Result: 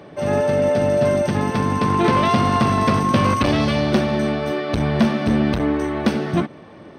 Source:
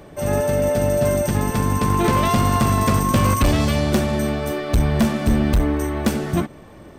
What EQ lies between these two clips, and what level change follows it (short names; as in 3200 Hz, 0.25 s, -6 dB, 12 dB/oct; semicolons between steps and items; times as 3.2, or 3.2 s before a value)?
polynomial smoothing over 15 samples; HPF 130 Hz 12 dB/oct; +2.0 dB